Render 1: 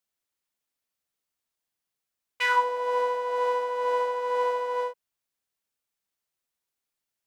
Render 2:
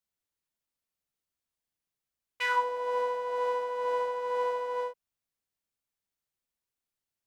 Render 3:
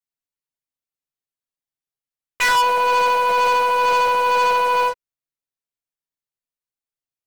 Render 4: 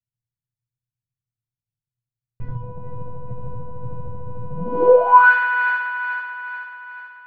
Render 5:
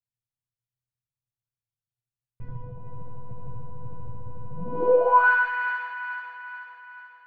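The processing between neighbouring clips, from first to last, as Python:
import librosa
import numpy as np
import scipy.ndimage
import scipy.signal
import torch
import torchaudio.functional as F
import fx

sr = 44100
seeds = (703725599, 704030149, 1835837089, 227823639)

y1 = fx.low_shelf(x, sr, hz=220.0, db=8.5)
y1 = y1 * 10.0 ** (-5.0 / 20.0)
y2 = y1 + 0.74 * np.pad(y1, (int(7.3 * sr / 1000.0), 0))[:len(y1)]
y2 = fx.leveller(y2, sr, passes=5)
y2 = y2 * 10.0 ** (2.0 / 20.0)
y3 = fx.echo_split(y2, sr, split_hz=900.0, low_ms=120, high_ms=434, feedback_pct=52, wet_db=-9.5)
y3 = fx.filter_sweep_lowpass(y3, sr, from_hz=120.0, to_hz=1700.0, start_s=4.5, end_s=5.32, q=7.0)
y3 = y3 * 10.0 ** (9.0 / 20.0)
y4 = fx.echo_multitap(y3, sr, ms=(54, 118, 167), db=(-18.0, -10.0, -8.0))
y4 = y4 * 10.0 ** (-7.5 / 20.0)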